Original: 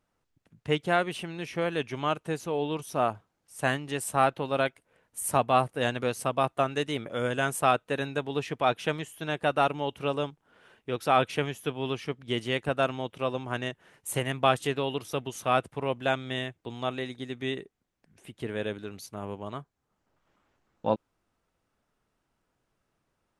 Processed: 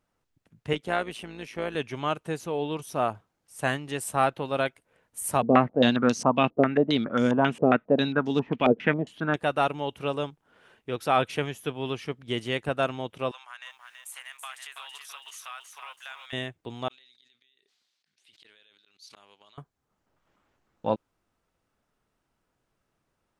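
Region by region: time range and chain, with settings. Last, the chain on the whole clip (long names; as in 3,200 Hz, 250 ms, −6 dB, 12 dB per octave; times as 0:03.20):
0:00.73–0:01.75: high-pass filter 160 Hz + amplitude modulation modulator 110 Hz, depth 40%
0:05.42–0:09.36: one scale factor per block 7 bits + parametric band 230 Hz +14 dB 0.88 octaves + low-pass on a step sequencer 7.4 Hz 460–5,900 Hz
0:13.31–0:16.33: high-pass filter 1,100 Hz 24 dB per octave + downward compressor 3 to 1, threshold −40 dBFS + feedback echo at a low word length 329 ms, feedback 35%, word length 11 bits, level −5.5 dB
0:16.88–0:19.58: gate with flip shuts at −28 dBFS, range −35 dB + resonant band-pass 4,200 Hz, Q 2.8 + level that may fall only so fast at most 22 dB per second
whole clip: no processing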